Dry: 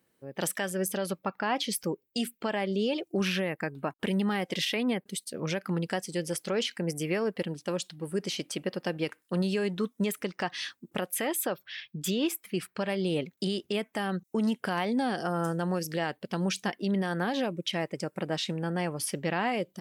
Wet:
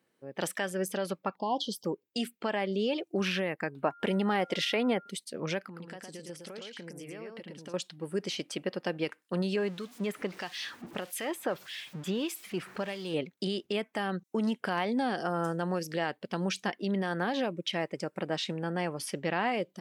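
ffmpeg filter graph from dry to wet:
ffmpeg -i in.wav -filter_complex "[0:a]asettb=1/sr,asplit=3[link_01][link_02][link_03];[link_01]atrim=end=1.364[link_04];[link_02]atrim=start=1.36:end=1.85,asetpts=PTS-STARTPTS,afade=type=in:duration=0.004:curve=qsin,afade=type=out:start_time=0.486:duration=0.004:curve=qsin,asuperstop=centerf=1800:order=20:qfactor=0.93,equalizer=frequency=9600:width=1.1:gain=-6.5[link_05];[link_03]atrim=start=1.846[link_06];[link_04][link_05]acrossfade=duration=0.004:curve1=hsin:curve2=qsin[link_07];[link_07][link_06]acrossfade=duration=0.004:curve1=qsin:curve2=hsin,asettb=1/sr,asplit=3[link_08][link_09][link_10];[link_08]atrim=end=3.834[link_11];[link_09]atrim=start=3.83:end=5.11,asetpts=PTS-STARTPTS,afade=type=in:duration=0.004:curve=qsin,afade=type=out:start_time=1.276:duration=0.004:curve=qsin,equalizer=frequency=670:width=0.83:gain=5.5,aeval=exprs='val(0)+0.00282*sin(2*PI*1400*n/s)':channel_layout=same[link_12];[link_10]atrim=start=5.106[link_13];[link_11][link_12]acrossfade=duration=0.004:curve1=hsin:curve2=qsin[link_14];[link_14][link_13]acrossfade=duration=0.004:curve1=qsin:curve2=hsin,asettb=1/sr,asplit=3[link_15][link_16][link_17];[link_15]atrim=end=5.634[link_18];[link_16]atrim=start=5.63:end=7.74,asetpts=PTS-STARTPTS,afade=type=in:duration=0.004:curve=qsin,afade=type=out:start_time=2.106:duration=0.004:curve=qsin,acompressor=threshold=-39dB:ratio=12:attack=3.2:release=140:knee=1:detection=peak,aecho=1:1:111:0.668,atrim=end_sample=93051[link_19];[link_17]atrim=start=7.736[link_20];[link_18][link_19]acrossfade=duration=0.004:curve1=hsin:curve2=qsin[link_21];[link_21][link_20]acrossfade=duration=0.004:curve1=qsin:curve2=hsin,asettb=1/sr,asplit=3[link_22][link_23][link_24];[link_22]atrim=end=9.564[link_25];[link_23]atrim=start=9.56:end=13.14,asetpts=PTS-STARTPTS,afade=type=in:duration=0.004:curve=qsin,afade=type=out:start_time=3.576:duration=0.004:curve=qsin,aeval=exprs='val(0)+0.5*0.0119*sgn(val(0))':channel_layout=same,acrossover=split=2400[link_26][link_27];[link_26]aeval=exprs='val(0)*(1-0.7/2+0.7/2*cos(2*PI*1.6*n/s))':channel_layout=same[link_28];[link_27]aeval=exprs='val(0)*(1-0.7/2-0.7/2*cos(2*PI*1.6*n/s))':channel_layout=same[link_29];[link_28][link_29]amix=inputs=2:normalize=0[link_30];[link_24]atrim=start=13.136[link_31];[link_25][link_30]acrossfade=duration=0.004:curve1=hsin:curve2=qsin[link_32];[link_32][link_31]acrossfade=duration=0.004:curve1=qsin:curve2=hsin,highpass=frequency=190:poles=1,highshelf=frequency=8700:gain=-11.5" out.wav

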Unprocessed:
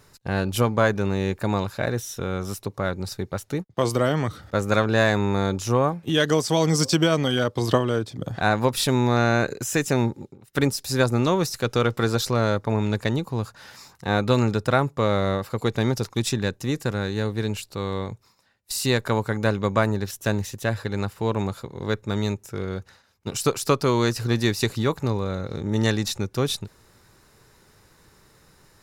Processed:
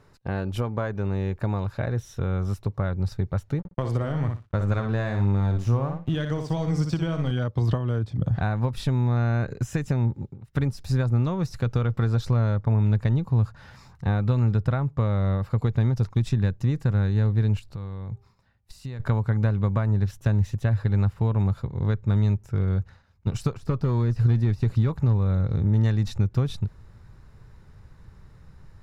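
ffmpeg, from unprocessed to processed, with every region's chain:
ffmpeg -i in.wav -filter_complex "[0:a]asettb=1/sr,asplit=3[link_01][link_02][link_03];[link_01]atrim=end=3.594[link_04];[link_02]atrim=start=3.59:end=7.31,asetpts=PTS-STARTPTS,afade=type=in:duration=0.004:curve=qsin,afade=type=out:start_time=3.716:duration=0.004:curve=qsin,aeval=exprs='sgn(val(0))*max(abs(val(0))-0.0126,0)':channel_layout=same,aecho=1:1:60|120|180:0.447|0.0715|0.0114,atrim=end_sample=164052[link_05];[link_03]atrim=start=7.306[link_06];[link_04][link_05]acrossfade=duration=0.004:curve1=hsin:curve2=qsin[link_07];[link_07][link_06]acrossfade=duration=0.004:curve1=qsin:curve2=hsin,asettb=1/sr,asplit=3[link_08][link_09][link_10];[link_08]atrim=end=17.594[link_11];[link_09]atrim=start=17.59:end=19,asetpts=PTS-STARTPTS,afade=type=in:duration=0.004:curve=qsin,afade=type=out:start_time=1.406:duration=0.004:curve=qsin,bandreject=frequency=399.5:width_type=h:width=4,bandreject=frequency=799:width_type=h:width=4,bandreject=frequency=1198.5:width_type=h:width=4,acompressor=threshold=-37dB:ratio=5:attack=3.2:release=140:knee=1:detection=peak[link_12];[link_10]atrim=start=18.996[link_13];[link_11][link_12]acrossfade=duration=0.004:curve1=hsin:curve2=qsin[link_14];[link_14][link_13]acrossfade=duration=0.004:curve1=qsin:curve2=hsin,asettb=1/sr,asplit=3[link_15][link_16][link_17];[link_15]atrim=end=23.534[link_18];[link_16]atrim=start=23.53:end=25.78,asetpts=PTS-STARTPTS,afade=type=in:duration=0.004:curve=qsin,afade=type=out:start_time=2.246:duration=0.004:curve=qsin,deesser=0.85,asoftclip=type=hard:threshold=-16dB[link_19];[link_17]atrim=start=25.776[link_20];[link_18][link_19]acrossfade=duration=0.004:curve1=hsin:curve2=qsin[link_21];[link_21][link_20]acrossfade=duration=0.004:curve1=qsin:curve2=hsin,acompressor=threshold=-24dB:ratio=5,asubboost=boost=5.5:cutoff=140,lowpass=frequency=1400:poles=1" out.wav

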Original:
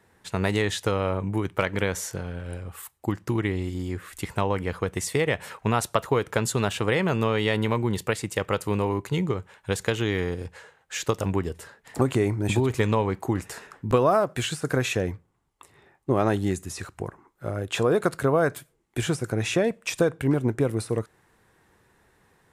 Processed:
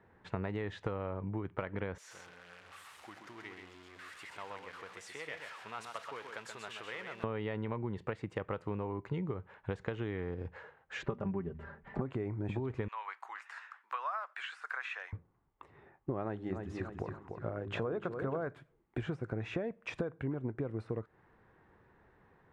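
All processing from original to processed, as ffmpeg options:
ffmpeg -i in.wav -filter_complex "[0:a]asettb=1/sr,asplit=3[link_01][link_02][link_03];[link_01]atrim=end=1.984[link_04];[link_02]atrim=start=1.98:end=7.24,asetpts=PTS-STARTPTS,afade=type=in:duration=0.004:curve=qsin,afade=type=out:start_time=5.256:duration=0.004:curve=qsin,aeval=exprs='val(0)+0.5*0.0473*sgn(val(0))':channel_layout=same,aderivative,aecho=1:1:130:0.531,atrim=end_sample=231966[link_05];[link_03]atrim=start=7.236[link_06];[link_04][link_05]acrossfade=duration=0.004:curve1=hsin:curve2=qsin[link_07];[link_07][link_06]acrossfade=duration=0.004:curve1=qsin:curve2=hsin,asettb=1/sr,asplit=3[link_08][link_09][link_10];[link_08]atrim=end=11.034[link_11];[link_09]atrim=start=11.03:end=12.01,asetpts=PTS-STARTPTS,afade=type=in:duration=0.004:curve=qsin,afade=type=out:start_time=0.976:duration=0.004:curve=qsin,bass=frequency=250:gain=7,treble=frequency=4000:gain=-15,aecho=1:1:5.1:0.71,atrim=end_sample=43218,bandreject=frequency=78.52:width_type=h:width=4,bandreject=frequency=157.04:width_type=h:width=4,bandreject=frequency=235.56:width_type=h:width=4[link_12];[link_10]atrim=start=12.006[link_13];[link_11][link_12]acrossfade=duration=0.004:curve1=hsin:curve2=qsin[link_14];[link_14][link_13]acrossfade=duration=0.004:curve1=qsin:curve2=hsin,asettb=1/sr,asplit=3[link_15][link_16][link_17];[link_15]atrim=end=12.884[link_18];[link_16]atrim=start=12.88:end=15.13,asetpts=PTS-STARTPTS,afade=type=in:duration=0.004:curve=qsin,afade=type=out:start_time=2.246:duration=0.004:curve=qsin,acrossover=split=2600[link_19][link_20];[link_20]acompressor=threshold=-43dB:ratio=4:attack=1:release=60[link_21];[link_19][link_21]amix=inputs=2:normalize=0,highpass=frequency=1100:width=0.5412,highpass=frequency=1100:width=1.3066,highshelf=frequency=4800:gain=10.5[link_22];[link_17]atrim=start=15.126[link_23];[link_18][link_22]acrossfade=duration=0.004:curve1=hsin:curve2=qsin[link_24];[link_24][link_23]acrossfade=duration=0.004:curve1=qsin:curve2=hsin,asettb=1/sr,asplit=3[link_25][link_26][link_27];[link_25]atrim=end=16.234[link_28];[link_26]atrim=start=16.23:end=18.47,asetpts=PTS-STARTPTS,afade=type=in:duration=0.004:curve=qsin,afade=type=out:start_time=2.236:duration=0.004:curve=qsin,bandreject=frequency=50:width_type=h:width=6,bandreject=frequency=100:width_type=h:width=6,bandreject=frequency=150:width_type=h:width=6,bandreject=frequency=200:width_type=h:width=6,bandreject=frequency=250:width_type=h:width=6,bandreject=frequency=300:width_type=h:width=6,bandreject=frequency=350:width_type=h:width=6,bandreject=frequency=400:width_type=h:width=6,aecho=1:1:293|586|879:0.355|0.0923|0.024,atrim=end_sample=98784[link_29];[link_27]atrim=start=18.466[link_30];[link_28][link_29]acrossfade=duration=0.004:curve1=hsin:curve2=qsin[link_31];[link_31][link_30]acrossfade=duration=0.004:curve1=qsin:curve2=hsin,lowpass=1800,acompressor=threshold=-32dB:ratio=6,volume=-2dB" out.wav

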